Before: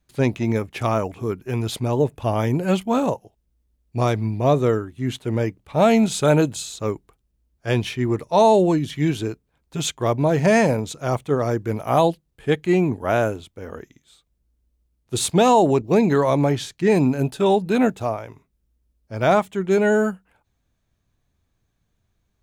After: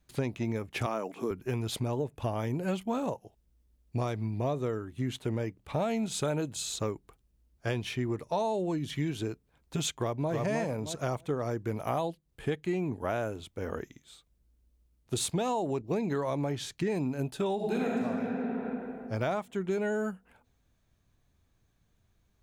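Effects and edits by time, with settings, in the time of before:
0.86–1.31 HPF 200 Hz 24 dB/oct
9.91–10.33 echo throw 0.31 s, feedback 15%, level -1 dB
17.55–17.99 reverb throw, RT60 2.3 s, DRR -5.5 dB
whole clip: compressor 6:1, threshold -29 dBFS

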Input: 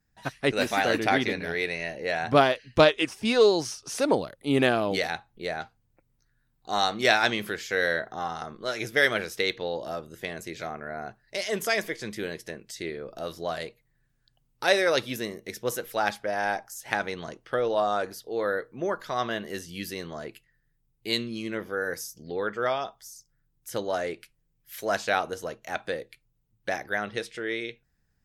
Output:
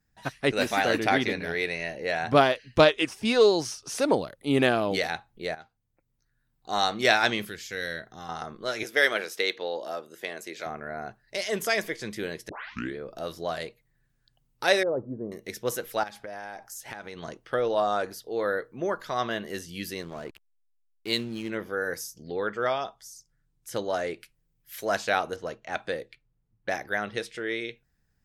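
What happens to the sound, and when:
5.55–6.87 fade in, from -14 dB
7.45–8.29 bell 790 Hz -12 dB 2.8 oct
8.83–10.66 HPF 320 Hz
12.49 tape start 0.47 s
14.83–15.32 Gaussian blur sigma 11 samples
16.03–17.23 compressor 8:1, threshold -35 dBFS
20.02–21.5 backlash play -39.5 dBFS
22.09–24.12 LPF 12000 Hz
25.36–26.7 low-pass opened by the level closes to 1800 Hz, open at -28.5 dBFS

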